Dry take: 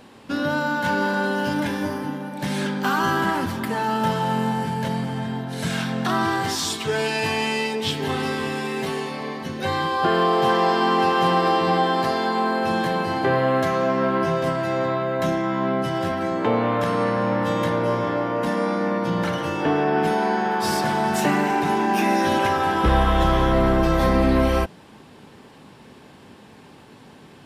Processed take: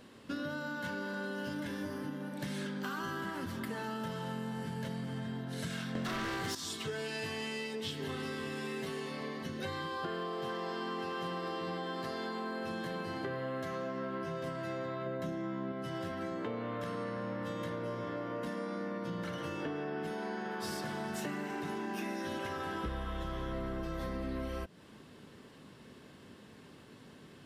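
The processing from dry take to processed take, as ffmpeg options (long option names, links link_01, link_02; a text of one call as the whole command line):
ffmpeg -i in.wav -filter_complex "[0:a]asettb=1/sr,asplit=3[link_01][link_02][link_03];[link_01]atrim=end=5.954[link_04];[link_02]atrim=start=5.95:end=6.55,asetpts=PTS-STARTPTS,afade=type=in:duration=0.004:curve=qsin,afade=type=out:start_time=0.596:duration=0.004:curve=qsin,aeval=exprs='0.282*sin(PI/2*2.51*val(0)/0.282)':channel_layout=same[link_05];[link_03]atrim=start=6.546[link_06];[link_04][link_05]acrossfade=duration=0.004:curve1=hsin:curve2=qsin[link_07];[link_07][link_06]acrossfade=duration=0.004:curve1=qsin:curve2=hsin,asettb=1/sr,asplit=3[link_08][link_09][link_10];[link_08]atrim=end=15.064[link_11];[link_09]atrim=start=15.06:end=15.72,asetpts=PTS-STARTPTS,afade=type=in:duration=0.004:curve=qsin,afade=type=out:start_time=0.656:duration=0.004:curve=qsin,equalizer=frequency=210:width=0.34:gain=6[link_12];[link_10]atrim=start=15.716[link_13];[link_11][link_12]acrossfade=duration=0.004:curve1=hsin:curve2=qsin[link_14];[link_14][link_13]acrossfade=duration=0.004:curve1=qsin:curve2=hsin,equalizer=frequency=830:width_type=o:width=0.4:gain=-9,bandreject=frequency=2400:width=19,acompressor=threshold=-28dB:ratio=6,volume=-7.5dB" out.wav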